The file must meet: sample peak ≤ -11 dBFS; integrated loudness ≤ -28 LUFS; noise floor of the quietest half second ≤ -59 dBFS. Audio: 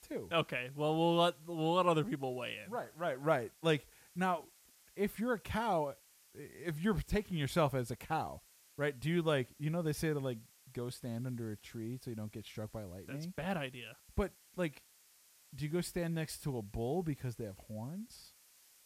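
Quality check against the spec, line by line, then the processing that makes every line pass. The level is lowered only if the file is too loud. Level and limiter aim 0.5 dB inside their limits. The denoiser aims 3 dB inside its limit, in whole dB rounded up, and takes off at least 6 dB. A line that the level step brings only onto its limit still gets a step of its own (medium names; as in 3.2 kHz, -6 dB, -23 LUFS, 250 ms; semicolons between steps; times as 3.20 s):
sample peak -17.5 dBFS: pass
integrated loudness -37.0 LUFS: pass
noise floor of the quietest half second -66 dBFS: pass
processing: none needed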